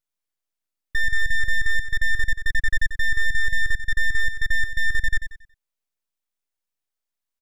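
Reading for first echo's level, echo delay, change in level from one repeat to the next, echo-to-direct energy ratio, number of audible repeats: -10.0 dB, 92 ms, -9.5 dB, -9.5 dB, 3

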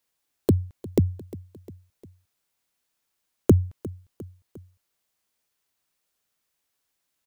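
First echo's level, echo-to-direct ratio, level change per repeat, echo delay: -18.5 dB, -17.0 dB, -5.0 dB, 0.353 s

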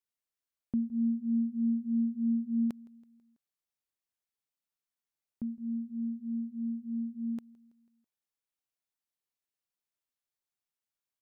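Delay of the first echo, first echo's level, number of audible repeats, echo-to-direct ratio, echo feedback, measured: 0.164 s, -24.0 dB, 3, -22.5 dB, 55%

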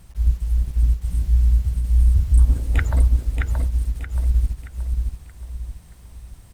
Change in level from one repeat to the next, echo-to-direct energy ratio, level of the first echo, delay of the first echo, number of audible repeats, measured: -8.0 dB, -3.5 dB, -4.0 dB, 0.626 s, 4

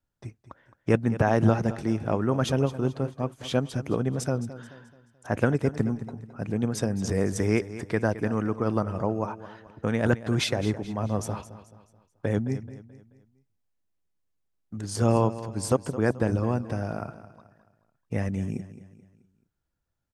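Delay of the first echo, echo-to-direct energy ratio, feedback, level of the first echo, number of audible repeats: 0.216 s, -13.5 dB, 41%, -14.5 dB, 3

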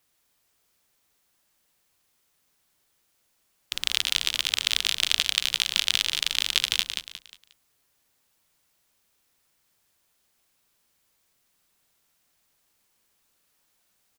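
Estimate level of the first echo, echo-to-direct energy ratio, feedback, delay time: -6.5 dB, -6.0 dB, 35%, 0.179 s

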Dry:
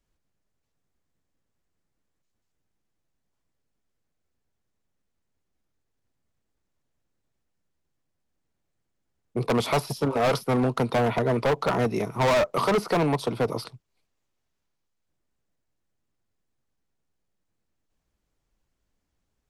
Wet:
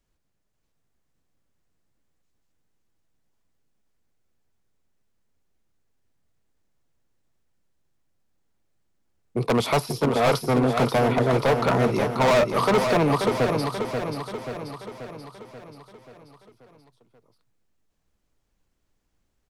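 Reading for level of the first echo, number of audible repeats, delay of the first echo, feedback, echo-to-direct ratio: -6.0 dB, 6, 0.534 s, 56%, -4.5 dB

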